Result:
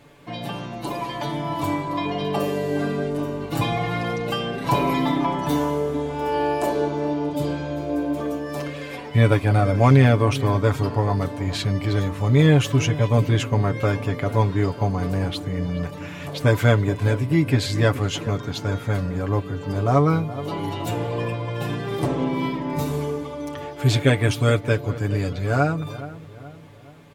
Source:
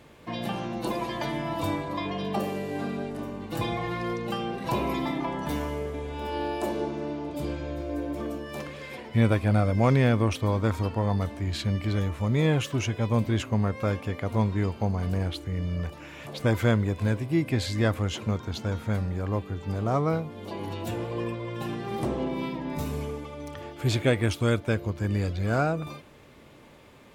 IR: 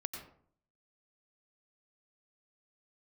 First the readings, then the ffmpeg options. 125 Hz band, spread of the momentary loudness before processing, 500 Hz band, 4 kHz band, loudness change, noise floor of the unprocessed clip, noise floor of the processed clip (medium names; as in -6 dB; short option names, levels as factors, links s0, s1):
+6.5 dB, 10 LU, +6.0 dB, +6.0 dB, +6.0 dB, -51 dBFS, -38 dBFS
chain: -filter_complex "[0:a]aecho=1:1:7:0.71,dynaudnorm=f=300:g=13:m=1.78,asplit=2[s0][s1];[s1]adelay=422,lowpass=f=1600:p=1,volume=0.188,asplit=2[s2][s3];[s3]adelay=422,lowpass=f=1600:p=1,volume=0.49,asplit=2[s4][s5];[s5]adelay=422,lowpass=f=1600:p=1,volume=0.49,asplit=2[s6][s7];[s7]adelay=422,lowpass=f=1600:p=1,volume=0.49,asplit=2[s8][s9];[s9]adelay=422,lowpass=f=1600:p=1,volume=0.49[s10];[s0][s2][s4][s6][s8][s10]amix=inputs=6:normalize=0"